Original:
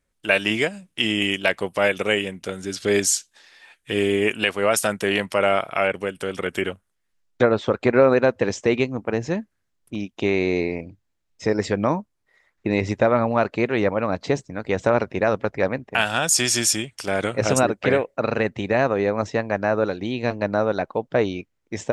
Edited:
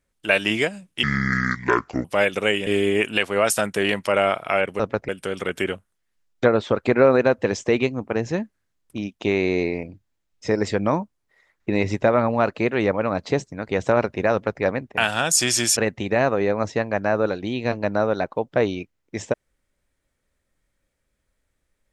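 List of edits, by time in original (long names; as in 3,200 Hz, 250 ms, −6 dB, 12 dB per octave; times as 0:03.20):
0:01.03–0:01.68: play speed 64%
0:02.30–0:03.93: remove
0:15.30–0:15.59: duplicate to 0:06.06
0:16.74–0:18.35: remove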